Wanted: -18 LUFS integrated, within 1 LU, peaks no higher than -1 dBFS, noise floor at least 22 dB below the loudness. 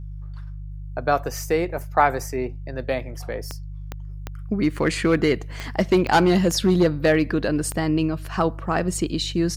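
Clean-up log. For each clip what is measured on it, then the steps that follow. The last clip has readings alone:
clicks 7; hum 50 Hz; harmonics up to 150 Hz; hum level -31 dBFS; loudness -22.5 LUFS; peak -4.5 dBFS; loudness target -18.0 LUFS
-> de-click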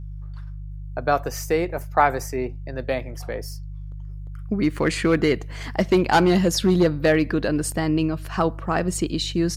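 clicks 0; hum 50 Hz; harmonics up to 150 Hz; hum level -31 dBFS
-> de-hum 50 Hz, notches 3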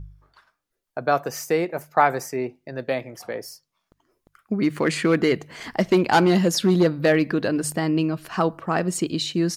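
hum none; loudness -22.5 LUFS; peak -4.5 dBFS; loudness target -18.0 LUFS
-> gain +4.5 dB; limiter -1 dBFS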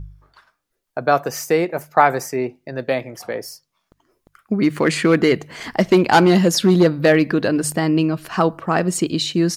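loudness -18.0 LUFS; peak -1.0 dBFS; noise floor -74 dBFS

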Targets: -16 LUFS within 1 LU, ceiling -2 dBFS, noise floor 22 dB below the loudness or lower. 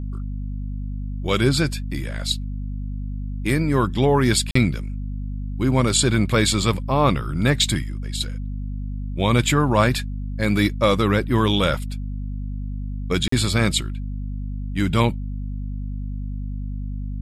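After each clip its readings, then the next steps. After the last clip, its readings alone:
dropouts 2; longest dropout 44 ms; hum 50 Hz; harmonics up to 250 Hz; hum level -25 dBFS; loudness -22.5 LUFS; peak -4.0 dBFS; loudness target -16.0 LUFS
-> interpolate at 4.51/13.28, 44 ms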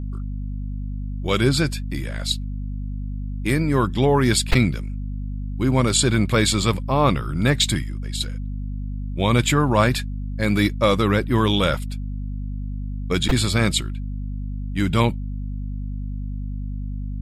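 dropouts 0; hum 50 Hz; harmonics up to 250 Hz; hum level -25 dBFS
-> notches 50/100/150/200/250 Hz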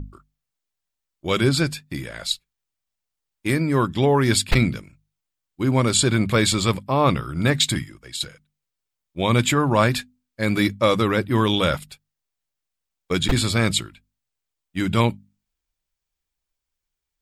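hum none; loudness -21.0 LUFS; peak -4.5 dBFS; loudness target -16.0 LUFS
-> gain +5 dB; limiter -2 dBFS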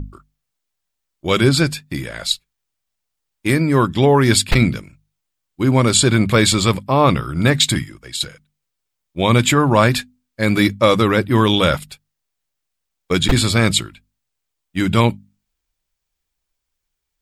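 loudness -16.5 LUFS; peak -2.0 dBFS; noise floor -78 dBFS

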